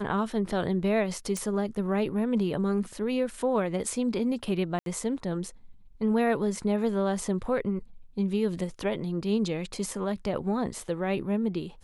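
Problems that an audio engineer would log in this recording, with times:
1.37 s: pop
4.79–4.86 s: dropout 72 ms

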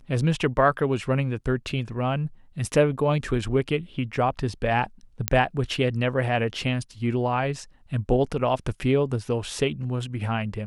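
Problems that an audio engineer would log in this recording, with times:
5.28 s: pop -3 dBFS

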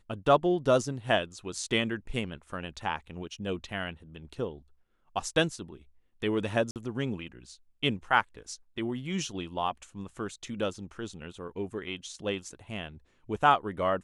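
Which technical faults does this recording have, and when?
6.71–6.76 s: dropout 48 ms

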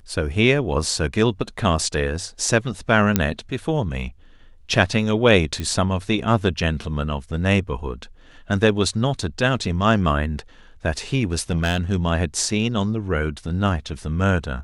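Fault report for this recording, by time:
3.16 s: pop -2 dBFS
5.60 s: pop -14 dBFS
11.33–11.80 s: clipped -15.5 dBFS

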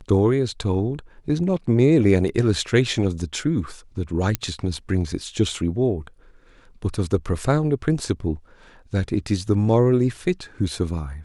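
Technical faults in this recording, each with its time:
4.35 s: pop -6 dBFS

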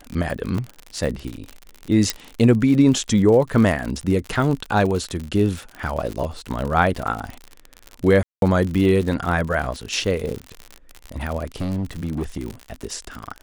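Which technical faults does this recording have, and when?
crackle 63 per s -25 dBFS
0.58 s: dropout 3.3 ms
2.10 s: pop -4 dBFS
8.23–8.42 s: dropout 192 ms
11.61–12.63 s: clipped -20.5 dBFS

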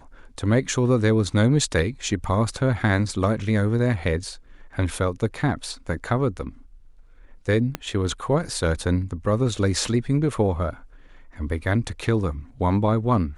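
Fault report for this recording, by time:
7.75 s: pop -11 dBFS

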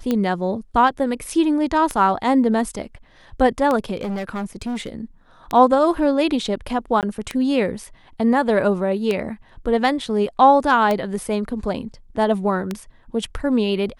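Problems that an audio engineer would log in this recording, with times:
tick 33 1/3 rpm -9 dBFS
3.96–4.92 s: clipped -22.5 dBFS
7.01–7.03 s: dropout 18 ms

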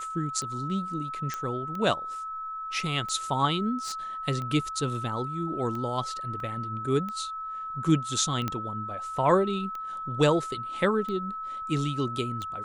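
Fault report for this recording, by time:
tick 45 rpm -24 dBFS
whine 1.3 kHz -33 dBFS
1.34 s: pop -18 dBFS
3.82–3.94 s: clipped -29.5 dBFS
6.40 s: dropout 2.2 ms
8.48 s: pop -15 dBFS

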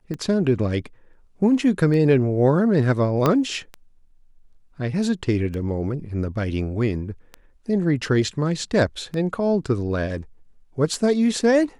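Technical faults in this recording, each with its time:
tick 33 1/3 rpm -19 dBFS
3.26 s: pop -6 dBFS

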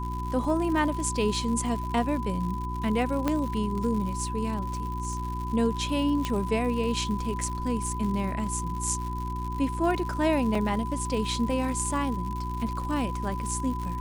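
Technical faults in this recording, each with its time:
crackle 150 per s -34 dBFS
hum 60 Hz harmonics 6 -33 dBFS
whine 1 kHz -34 dBFS
3.28 s: pop -12 dBFS
6.25 s: pop -14 dBFS
10.55 s: dropout 3.2 ms

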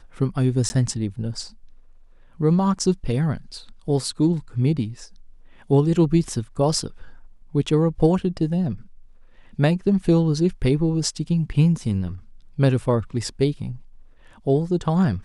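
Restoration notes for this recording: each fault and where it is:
0.69–0.70 s: dropout 10 ms

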